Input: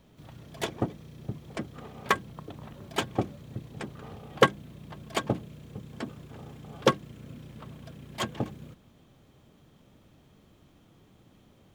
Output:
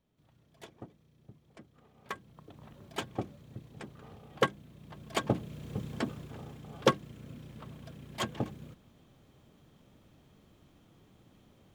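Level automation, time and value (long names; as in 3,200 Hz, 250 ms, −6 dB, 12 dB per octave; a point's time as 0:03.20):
0:01.86 −18.5 dB
0:02.68 −7.5 dB
0:04.72 −7.5 dB
0:05.81 +5 dB
0:06.61 −2.5 dB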